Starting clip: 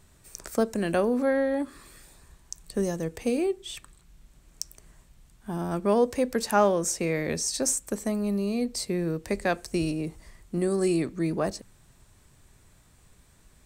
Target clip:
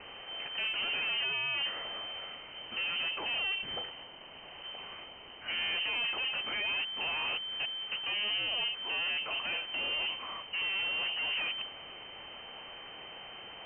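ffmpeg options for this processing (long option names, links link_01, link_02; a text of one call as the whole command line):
ffmpeg -i in.wav -filter_complex "[0:a]asplit=2[link_01][link_02];[link_02]highpass=frequency=720:poles=1,volume=37dB,asoftclip=type=tanh:threshold=-10dB[link_03];[link_01][link_03]amix=inputs=2:normalize=0,lowpass=frequency=1200:poles=1,volume=-6dB,aexciter=amount=4.6:drive=9.4:freq=2400,aeval=exprs='(tanh(17.8*val(0)+0.65)-tanh(0.65))/17.8':channel_layout=same,lowpass=frequency=2600:width_type=q:width=0.5098,lowpass=frequency=2600:width_type=q:width=0.6013,lowpass=frequency=2600:width_type=q:width=0.9,lowpass=frequency=2600:width_type=q:width=2.563,afreqshift=-3100,volume=-8dB" out.wav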